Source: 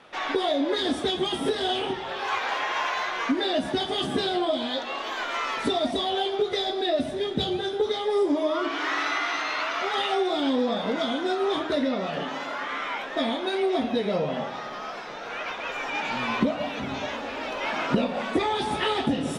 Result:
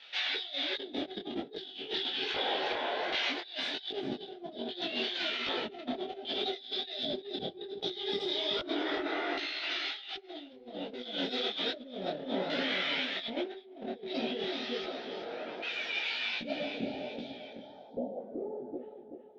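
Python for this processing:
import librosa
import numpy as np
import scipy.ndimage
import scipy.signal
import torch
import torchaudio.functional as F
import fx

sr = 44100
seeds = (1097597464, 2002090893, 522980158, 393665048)

y = fx.fade_out_tail(x, sr, length_s=6.01)
y = fx.brickwall_bandstop(y, sr, low_hz=910.0, high_hz=3100.0, at=(16.37, 18.18))
y = fx.filter_lfo_bandpass(y, sr, shape='square', hz=0.64, low_hz=390.0, high_hz=3800.0, q=1.1)
y = fx.peak_eq(y, sr, hz=1100.0, db=-13.5, octaves=0.36)
y = fx.echo_feedback(y, sr, ms=379, feedback_pct=45, wet_db=-7.5)
y = fx.filter_sweep_lowpass(y, sr, from_hz=4100.0, to_hz=560.0, start_s=17.14, end_s=18.28, q=1.7)
y = fx.over_compress(y, sr, threshold_db=-35.0, ratio=-0.5)
y = fx.high_shelf(y, sr, hz=7100.0, db=-9.5, at=(5.3, 5.94))
y = fx.detune_double(y, sr, cents=44)
y = y * 10.0 ** (3.0 / 20.0)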